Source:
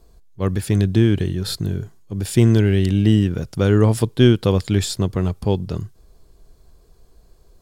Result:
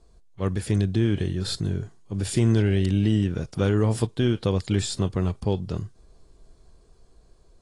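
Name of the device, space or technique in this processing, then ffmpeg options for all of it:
low-bitrate web radio: -af "dynaudnorm=framelen=380:gausssize=9:maxgain=13dB,alimiter=limit=-7dB:level=0:latency=1:release=232,volume=-5dB" -ar 22050 -c:a aac -b:a 32k

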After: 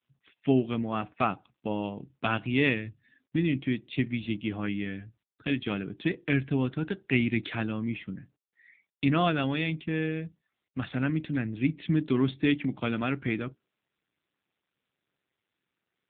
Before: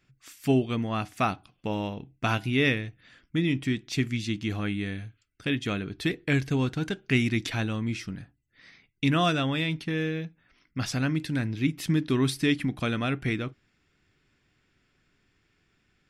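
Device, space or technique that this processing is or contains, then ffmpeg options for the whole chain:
mobile call with aggressive noise cancelling: -filter_complex "[0:a]asplit=3[link_01][link_02][link_03];[link_01]afade=type=out:start_time=2.84:duration=0.02[link_04];[link_02]equalizer=frequency=100:width_type=o:width=0.33:gain=7,equalizer=frequency=250:width_type=o:width=0.33:gain=6,equalizer=frequency=500:width_type=o:width=0.33:gain=-10,equalizer=frequency=1250:width_type=o:width=0.33:gain=-9,equalizer=frequency=5000:width_type=o:width=0.33:gain=5,equalizer=frequency=8000:width_type=o:width=0.33:gain=-5,afade=type=in:start_time=2.84:duration=0.02,afade=type=out:start_time=3.37:duration=0.02[link_05];[link_03]afade=type=in:start_time=3.37:duration=0.02[link_06];[link_04][link_05][link_06]amix=inputs=3:normalize=0,highpass=130,afftdn=noise_reduction=26:noise_floor=-50" -ar 8000 -c:a libopencore_amrnb -b:a 7950

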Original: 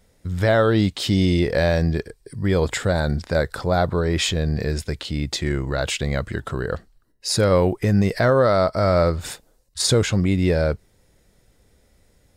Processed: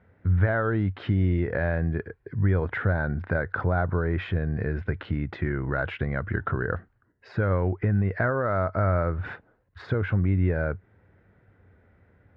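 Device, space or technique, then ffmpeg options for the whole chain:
bass amplifier: -af "acompressor=threshold=-25dB:ratio=4,highpass=79,equalizer=frequency=94:width_type=q:width=4:gain=10,equalizer=frequency=540:width_type=q:width=4:gain=-3,equalizer=frequency=1500:width_type=q:width=4:gain=7,lowpass=frequency=2100:width=0.5412,lowpass=frequency=2100:width=1.3066,volume=1dB"

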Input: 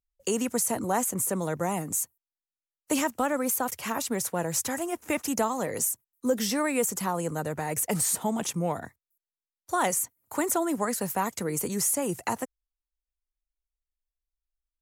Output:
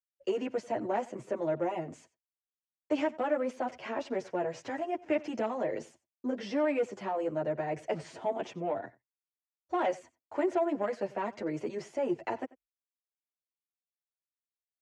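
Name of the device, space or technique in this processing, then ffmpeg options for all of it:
barber-pole flanger into a guitar amplifier: -filter_complex "[0:a]asettb=1/sr,asplit=3[link_01][link_02][link_03];[link_01]atrim=end=2.984[link_04];[link_02]atrim=start=2.98:end=3.66,asetpts=PTS-STARTPTS,afade=type=in:duration=0.004:curve=qsin,afade=type=out:start_time=0.676:duration=0.004:curve=qsin,equalizer=frequency=12000:width_type=o:width=1.1:gain=3.5[link_05];[link_03]atrim=start=3.656[link_06];[link_04][link_05]acrossfade=duration=0.004:curve1=hsin:curve2=qsin[link_07];[link_07][link_06]acrossfade=duration=0.004:curve1=qsin:curve2=hsin,asplit=2[link_08][link_09];[link_09]adelay=8.7,afreqshift=0.49[link_10];[link_08][link_10]amix=inputs=2:normalize=1,asoftclip=type=tanh:threshold=-23dB,highpass=81,equalizer=frequency=92:width_type=q:width=4:gain=-9,equalizer=frequency=180:width_type=q:width=4:gain=-10,equalizer=frequency=350:width_type=q:width=4:gain=7,equalizer=frequency=620:width_type=q:width=4:gain=9,equalizer=frequency=1200:width_type=q:width=4:gain=-5,equalizer=frequency=3800:width_type=q:width=4:gain=-8,lowpass=frequency=4000:width=0.5412,lowpass=frequency=4000:width=1.3066,agate=range=-33dB:threshold=-55dB:ratio=3:detection=peak,aecho=1:1:91:0.0891,volume=-1.5dB"

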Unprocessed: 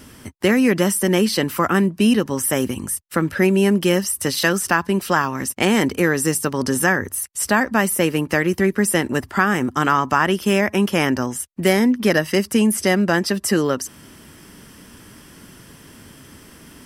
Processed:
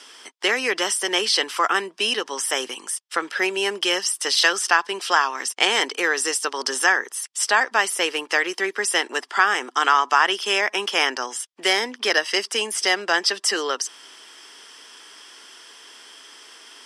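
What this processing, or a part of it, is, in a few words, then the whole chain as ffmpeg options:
phone speaker on a table: -af "highpass=frequency=470:width=0.5412,highpass=frequency=470:width=1.3066,equalizer=frequency=570:width_type=q:width=4:gain=-9,equalizer=frequency=3300:width_type=q:width=4:gain=8,equalizer=frequency=5200:width_type=q:width=4:gain=6,lowpass=frequency=9000:width=0.5412,lowpass=frequency=9000:width=1.3066,volume=1dB"

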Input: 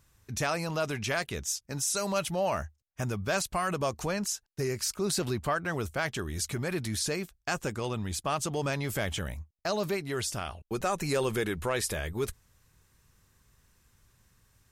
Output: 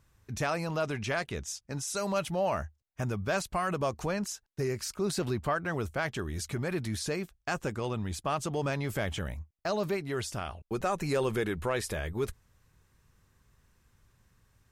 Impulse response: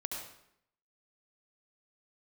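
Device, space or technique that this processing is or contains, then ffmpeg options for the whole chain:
behind a face mask: -filter_complex "[0:a]highshelf=frequency=3400:gain=-7.5,asettb=1/sr,asplit=3[link_01][link_02][link_03];[link_01]atrim=end=0.824[link_04];[link_02]atrim=start=0.82:end=1.89,asetpts=PTS-STARTPTS,afade=type=in:duration=0.004:curve=qsin,afade=type=out:start_time=1.066:duration=0.004:curve=qsin,lowpass=11000[link_05];[link_03]atrim=start=1.886[link_06];[link_04][link_05]acrossfade=duration=0.004:curve1=hsin:curve2=qsin[link_07];[link_07][link_06]acrossfade=duration=0.004:curve1=qsin:curve2=hsin"

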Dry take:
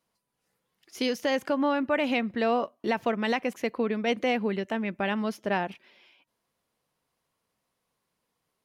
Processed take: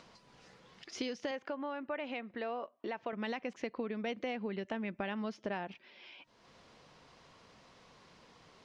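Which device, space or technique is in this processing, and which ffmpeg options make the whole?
upward and downward compression: -filter_complex "[0:a]lowpass=frequency=6000:width=0.5412,lowpass=frequency=6000:width=1.3066,acompressor=mode=upward:threshold=-41dB:ratio=2.5,acompressor=threshold=-34dB:ratio=6,asettb=1/sr,asplit=3[link_01][link_02][link_03];[link_01]atrim=end=1.314[link_04];[link_02]atrim=start=1.31:end=3.13,asetpts=PTS-STARTPTS,afade=type=in:duration=0.004:curve=qsin,afade=type=out:start_time=1.816:duration=0.004:curve=qsin,bass=frequency=250:gain=-11,treble=frequency=4000:gain=-9[link_05];[link_03]atrim=start=3.126[link_06];[link_04][link_05]acrossfade=duration=0.004:curve1=hsin:curve2=qsin[link_07];[link_07][link_06]acrossfade=duration=0.004:curve1=qsin:curve2=hsin,volume=-1dB"

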